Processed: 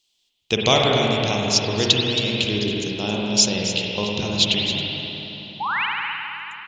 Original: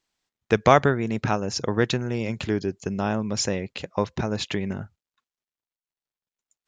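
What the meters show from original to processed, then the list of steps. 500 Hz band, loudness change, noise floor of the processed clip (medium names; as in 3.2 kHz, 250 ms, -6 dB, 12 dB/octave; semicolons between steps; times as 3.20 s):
+1.0 dB, +4.5 dB, -69 dBFS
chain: resonant high shelf 2.3 kHz +11.5 dB, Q 3; painted sound rise, 5.60–5.86 s, 780–3200 Hz -22 dBFS; on a send: delay 272 ms -11 dB; on the sum: spring tank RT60 3.5 s, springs 48/53 ms, chirp 55 ms, DRR -2.5 dB; trim -3 dB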